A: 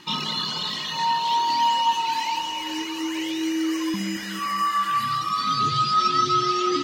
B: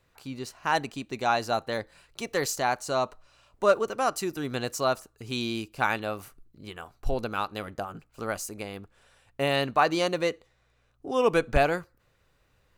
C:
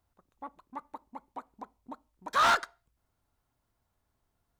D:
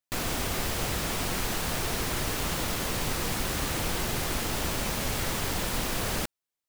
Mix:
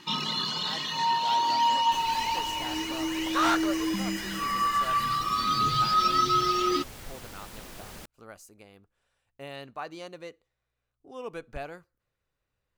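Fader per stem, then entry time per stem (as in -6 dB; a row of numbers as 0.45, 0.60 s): -3.0, -15.5, -1.5, -14.5 dB; 0.00, 0.00, 1.00, 1.80 s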